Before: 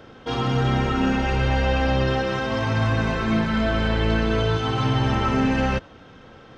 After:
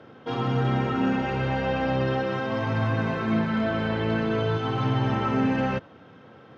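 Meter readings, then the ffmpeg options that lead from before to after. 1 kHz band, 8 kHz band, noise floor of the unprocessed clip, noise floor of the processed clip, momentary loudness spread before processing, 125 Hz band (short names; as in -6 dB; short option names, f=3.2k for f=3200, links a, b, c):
-3.0 dB, n/a, -46 dBFS, -50 dBFS, 3 LU, -4.0 dB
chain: -af "highpass=f=100:w=0.5412,highpass=f=100:w=1.3066,aemphasis=mode=reproduction:type=75fm,volume=-3dB"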